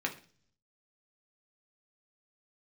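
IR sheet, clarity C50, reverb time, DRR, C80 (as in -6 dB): 13.5 dB, 0.45 s, 0.5 dB, 18.0 dB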